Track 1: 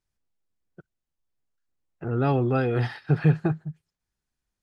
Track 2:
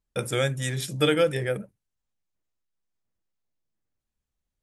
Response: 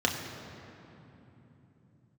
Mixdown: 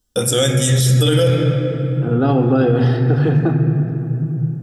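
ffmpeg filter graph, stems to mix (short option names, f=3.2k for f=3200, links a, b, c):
-filter_complex "[0:a]volume=2dB,asplit=2[a][b];[b]volume=-8dB[c];[1:a]bass=f=250:g=5,treble=f=4k:g=14,volume=2dB,asplit=3[d][e][f];[d]atrim=end=1.28,asetpts=PTS-STARTPTS,afade=t=out:st=1.276:d=0.004:c=hsin[g];[e]atrim=start=1.28:end=2.19,asetpts=PTS-STARTPTS,volume=0[h];[f]atrim=start=2.19,asetpts=PTS-STARTPTS,afade=t=in:d=0.004:c=hsin[i];[g][h][i]concat=n=3:v=0:a=1,asplit=2[j][k];[k]volume=-6dB[l];[2:a]atrim=start_sample=2205[m];[c][l]amix=inputs=2:normalize=0[n];[n][m]afir=irnorm=-1:irlink=0[o];[a][j][o]amix=inputs=3:normalize=0,alimiter=limit=-6.5dB:level=0:latency=1:release=18"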